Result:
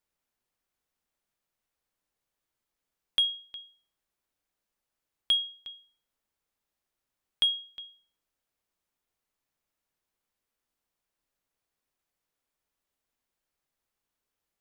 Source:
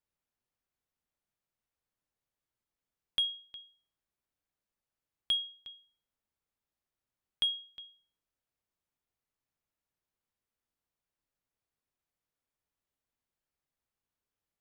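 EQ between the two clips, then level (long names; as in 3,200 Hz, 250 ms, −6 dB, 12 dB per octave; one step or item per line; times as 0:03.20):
parametric band 100 Hz −5.5 dB 1.9 octaves
+5.0 dB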